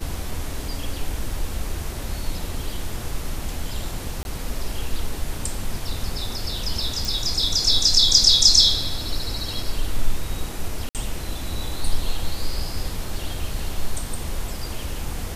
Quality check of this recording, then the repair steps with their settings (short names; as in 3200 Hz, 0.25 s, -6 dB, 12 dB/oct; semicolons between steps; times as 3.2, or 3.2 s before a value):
4.23–4.25 gap 21 ms
7.05 pop
10.89–10.95 gap 58 ms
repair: de-click; interpolate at 4.23, 21 ms; interpolate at 10.89, 58 ms